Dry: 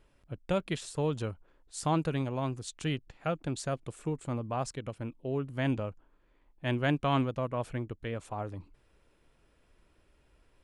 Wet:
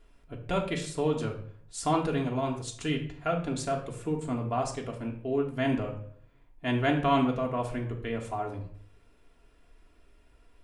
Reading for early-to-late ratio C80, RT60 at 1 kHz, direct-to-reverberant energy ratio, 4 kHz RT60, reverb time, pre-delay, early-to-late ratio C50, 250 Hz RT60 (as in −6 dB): 12.0 dB, 0.50 s, −1.0 dB, 0.45 s, 0.55 s, 3 ms, 8.5 dB, 0.65 s